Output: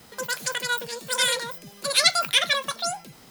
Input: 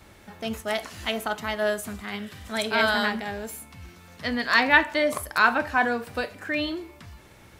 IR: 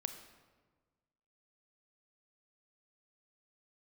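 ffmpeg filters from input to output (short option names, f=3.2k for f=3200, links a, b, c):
-af "aemphasis=mode=production:type=50fm,asetrate=101430,aresample=44100"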